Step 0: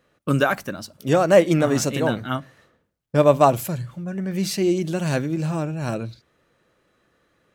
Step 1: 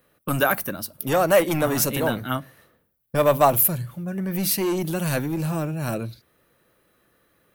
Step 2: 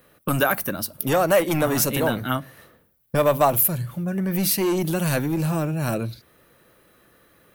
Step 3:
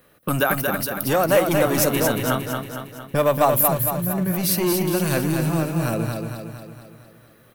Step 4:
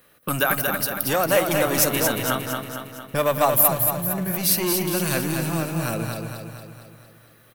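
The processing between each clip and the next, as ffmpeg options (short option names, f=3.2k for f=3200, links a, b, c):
-filter_complex "[0:a]acrossover=split=590|4000[a][b][c];[a]volume=22.5dB,asoftclip=hard,volume=-22.5dB[d];[c]aexciter=amount=8.7:drive=2.5:freq=9.8k[e];[d][b][e]amix=inputs=3:normalize=0"
-af "acompressor=threshold=-36dB:ratio=1.5,volume=7dB"
-af "aecho=1:1:229|458|687|916|1145|1374|1603:0.562|0.304|0.164|0.0885|0.0478|0.0258|0.0139"
-filter_complex "[0:a]tiltshelf=f=1.1k:g=-3.5,asplit=2[a][b];[b]adelay=167,lowpass=f=1.6k:p=1,volume=-13dB,asplit=2[c][d];[d]adelay=167,lowpass=f=1.6k:p=1,volume=0.52,asplit=2[e][f];[f]adelay=167,lowpass=f=1.6k:p=1,volume=0.52,asplit=2[g][h];[h]adelay=167,lowpass=f=1.6k:p=1,volume=0.52,asplit=2[i][j];[j]adelay=167,lowpass=f=1.6k:p=1,volume=0.52[k];[a][c][e][g][i][k]amix=inputs=6:normalize=0,volume=-1dB"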